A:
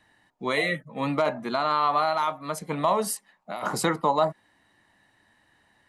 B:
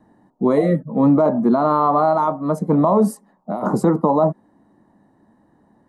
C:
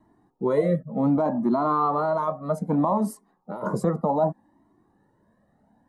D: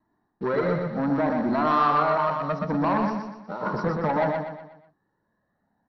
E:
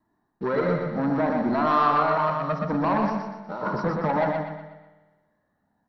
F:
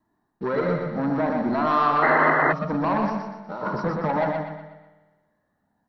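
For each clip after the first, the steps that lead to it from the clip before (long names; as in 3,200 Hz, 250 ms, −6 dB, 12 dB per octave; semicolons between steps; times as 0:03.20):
drawn EQ curve 100 Hz 0 dB, 210 Hz +12 dB, 1,100 Hz −2 dB, 2,600 Hz −25 dB, 6,400 Hz −14 dB; in parallel at +3 dB: speech leveller 2 s; on the sum: brickwall limiter −7 dBFS, peak gain reduction 6 dB
flanger whose copies keep moving one way rising 0.65 Hz; level −1.5 dB
leveller curve on the samples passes 2; Chebyshev low-pass with heavy ripple 5,800 Hz, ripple 9 dB; on a send: repeating echo 122 ms, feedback 43%, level −4 dB
spring reverb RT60 1.4 s, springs 51 ms, chirp 45 ms, DRR 9.5 dB
sound drawn into the spectrogram noise, 0:02.02–0:02.53, 240–2,100 Hz −20 dBFS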